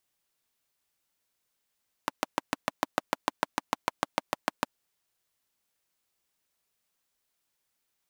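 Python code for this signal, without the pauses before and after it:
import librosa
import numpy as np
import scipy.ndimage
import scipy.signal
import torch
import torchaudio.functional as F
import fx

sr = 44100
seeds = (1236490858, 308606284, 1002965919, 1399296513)

y = fx.engine_single(sr, seeds[0], length_s=2.57, rpm=800, resonances_hz=(290.0, 620.0, 880.0))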